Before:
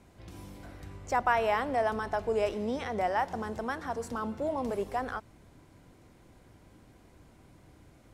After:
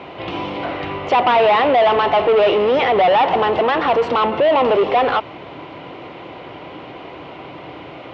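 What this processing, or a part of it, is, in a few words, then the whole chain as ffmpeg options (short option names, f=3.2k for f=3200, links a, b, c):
overdrive pedal into a guitar cabinet: -filter_complex "[0:a]asplit=2[a][b];[b]highpass=f=720:p=1,volume=31dB,asoftclip=type=tanh:threshold=-13.5dB[c];[a][c]amix=inputs=2:normalize=0,lowpass=f=1.8k:p=1,volume=-6dB,highpass=90,equalizer=f=98:t=q:w=4:g=-4,equalizer=f=220:t=q:w=4:g=-10,equalizer=f=1.6k:t=q:w=4:g=-9,equalizer=f=2.9k:t=q:w=4:g=6,lowpass=f=3.7k:w=0.5412,lowpass=f=3.7k:w=1.3066,volume=8dB"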